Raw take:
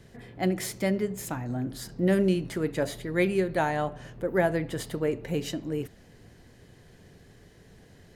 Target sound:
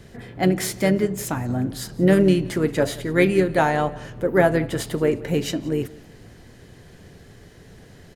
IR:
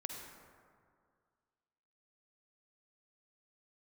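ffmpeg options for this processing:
-filter_complex "[0:a]asplit=2[link_01][link_02];[link_02]asetrate=35002,aresample=44100,atempo=1.25992,volume=-12dB[link_03];[link_01][link_03]amix=inputs=2:normalize=0,aecho=1:1:176|352:0.0794|0.0262,volume=7dB"

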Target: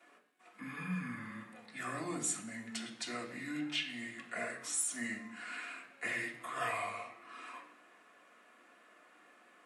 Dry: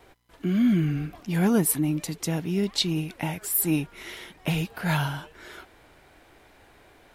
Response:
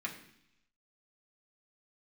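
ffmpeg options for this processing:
-filter_complex "[0:a]alimiter=limit=-16.5dB:level=0:latency=1:release=249,asetrate=32667,aresample=44100,highpass=470[link_01];[1:a]atrim=start_sample=2205[link_02];[link_01][link_02]afir=irnorm=-1:irlink=0,volume=-5.5dB"

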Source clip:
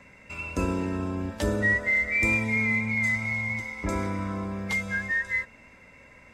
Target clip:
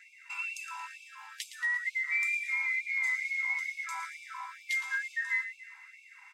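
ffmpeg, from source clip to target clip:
ffmpeg -i in.wav -af "acompressor=threshold=-27dB:ratio=6,aecho=1:1:114|228|342|456|570|684:0.266|0.146|0.0805|0.0443|0.0243|0.0134,afftfilt=real='re*gte(b*sr/1024,740*pow(2200/740,0.5+0.5*sin(2*PI*2.2*pts/sr)))':imag='im*gte(b*sr/1024,740*pow(2200/740,0.5+0.5*sin(2*PI*2.2*pts/sr)))':win_size=1024:overlap=0.75" out.wav

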